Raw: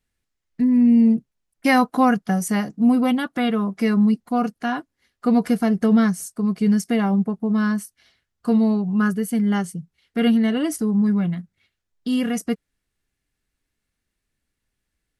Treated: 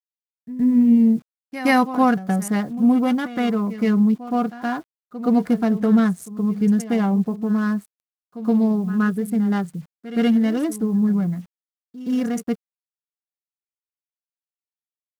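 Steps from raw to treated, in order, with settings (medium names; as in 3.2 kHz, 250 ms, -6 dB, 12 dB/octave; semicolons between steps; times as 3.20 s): local Wiener filter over 15 samples; bit crusher 9-bit; reverse echo 121 ms -14 dB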